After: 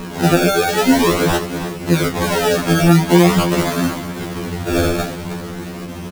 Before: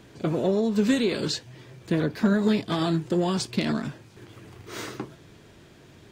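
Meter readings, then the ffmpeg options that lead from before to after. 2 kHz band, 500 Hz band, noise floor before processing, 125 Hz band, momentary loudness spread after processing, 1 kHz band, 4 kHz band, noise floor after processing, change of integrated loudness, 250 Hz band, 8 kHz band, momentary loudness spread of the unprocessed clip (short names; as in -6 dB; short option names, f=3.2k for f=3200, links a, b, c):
+14.5 dB, +10.5 dB, -52 dBFS, +13.0 dB, 15 LU, +15.5 dB, +10.5 dB, -29 dBFS, +9.5 dB, +9.0 dB, +15.0 dB, 14 LU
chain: -filter_complex "[0:a]highpass=f=89:w=0.5412,highpass=f=89:w=1.3066,asplit=2[a][b];[b]acompressor=threshold=-33dB:ratio=6,volume=0.5dB[c];[a][c]amix=inputs=2:normalize=0,aeval=exprs='val(0)+0.0126*(sin(2*PI*60*n/s)+sin(2*PI*2*60*n/s)/2+sin(2*PI*3*60*n/s)/3+sin(2*PI*4*60*n/s)/4+sin(2*PI*5*60*n/s)/5)':c=same,acrusher=samples=30:mix=1:aa=0.000001:lfo=1:lforange=30:lforate=0.46,aecho=1:1:315|630|945:0.141|0.0579|0.0237,alimiter=level_in=21dB:limit=-1dB:release=50:level=0:latency=1,afftfilt=real='re*2*eq(mod(b,4),0)':imag='im*2*eq(mod(b,4),0)':win_size=2048:overlap=0.75,volume=-4dB"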